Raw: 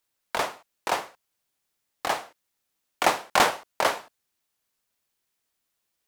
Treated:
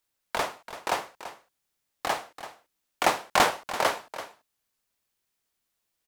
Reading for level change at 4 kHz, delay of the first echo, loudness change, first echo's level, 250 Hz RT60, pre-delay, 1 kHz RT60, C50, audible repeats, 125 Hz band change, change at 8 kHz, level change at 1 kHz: -1.0 dB, 0.336 s, -1.0 dB, -13.0 dB, none, none, none, none, 1, +0.5 dB, -1.5 dB, -1.0 dB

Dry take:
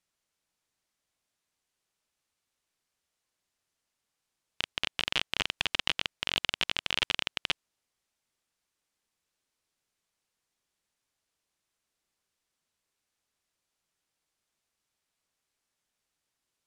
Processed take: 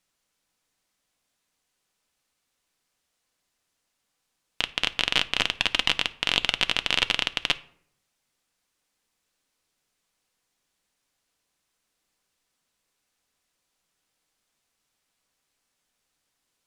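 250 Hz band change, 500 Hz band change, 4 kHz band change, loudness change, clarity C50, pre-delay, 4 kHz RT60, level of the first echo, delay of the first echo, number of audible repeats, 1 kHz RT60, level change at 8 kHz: +6.5 dB, +6.0 dB, +6.5 dB, +6.5 dB, 19.5 dB, 4 ms, 0.35 s, none, none, none, 0.60 s, +6.0 dB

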